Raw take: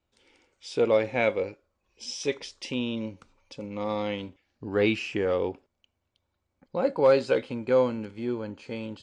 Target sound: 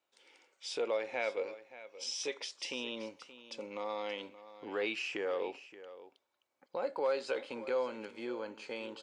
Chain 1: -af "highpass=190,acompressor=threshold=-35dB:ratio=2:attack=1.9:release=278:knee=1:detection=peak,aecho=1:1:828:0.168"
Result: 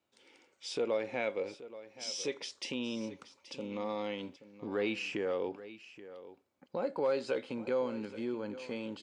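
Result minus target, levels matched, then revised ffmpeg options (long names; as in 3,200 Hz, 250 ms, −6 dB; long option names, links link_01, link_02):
echo 253 ms late; 250 Hz band +6.0 dB
-af "highpass=490,acompressor=threshold=-35dB:ratio=2:attack=1.9:release=278:knee=1:detection=peak,aecho=1:1:575:0.168"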